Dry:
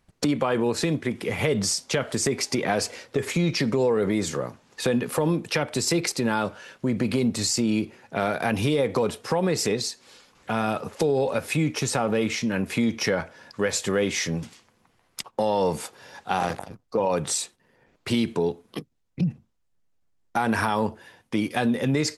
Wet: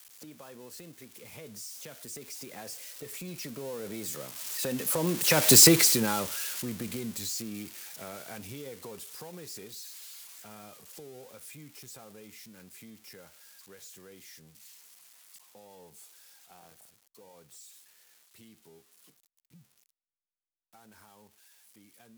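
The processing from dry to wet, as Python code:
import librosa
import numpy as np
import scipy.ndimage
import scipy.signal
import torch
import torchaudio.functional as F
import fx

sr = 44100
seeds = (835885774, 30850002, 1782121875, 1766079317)

y = x + 0.5 * 10.0 ** (-15.5 / 20.0) * np.diff(np.sign(x), prepend=np.sign(x[:1]))
y = fx.doppler_pass(y, sr, speed_mps=15, closest_m=2.4, pass_at_s=5.58)
y = y * librosa.db_to_amplitude(5.0)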